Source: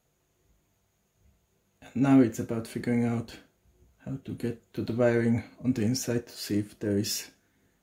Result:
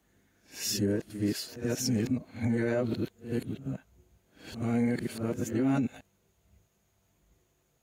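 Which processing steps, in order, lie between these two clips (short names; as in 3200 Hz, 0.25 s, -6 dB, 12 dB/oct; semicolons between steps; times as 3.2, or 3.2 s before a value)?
whole clip reversed; limiter -20.5 dBFS, peak gain reduction 8.5 dB; pre-echo 80 ms -13 dB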